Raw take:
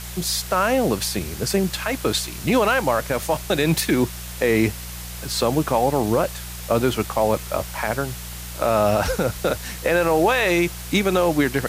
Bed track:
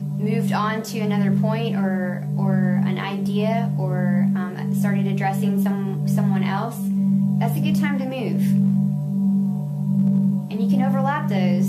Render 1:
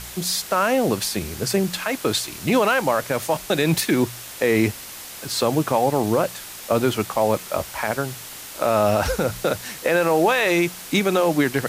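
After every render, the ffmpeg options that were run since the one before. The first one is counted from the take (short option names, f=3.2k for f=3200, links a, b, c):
-af "bandreject=f=60:t=h:w=4,bandreject=f=120:t=h:w=4,bandreject=f=180:t=h:w=4"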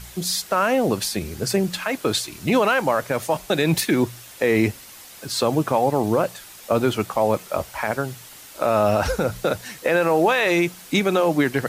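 -af "afftdn=nr=7:nf=-37"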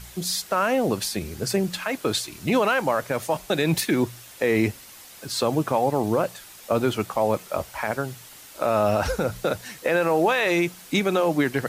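-af "volume=-2.5dB"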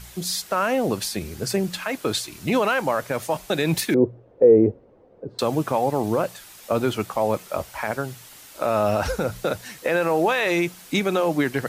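-filter_complex "[0:a]asettb=1/sr,asplit=3[a][b][c];[a]atrim=end=3.944[d];[b]atrim=start=3.94:end=5.39,asetpts=PTS-STARTPTS,afade=t=in:d=0.004:c=qsin,afade=t=out:st=1.446:d=0.004:c=qsin,lowpass=f=480:t=q:w=3.5[e];[c]atrim=start=5.386[f];[d][e]acrossfade=d=0.004:c1=hsin:c2=qsin[g];[g][f]acrossfade=d=0.004:c1=qsin:c2=hsin"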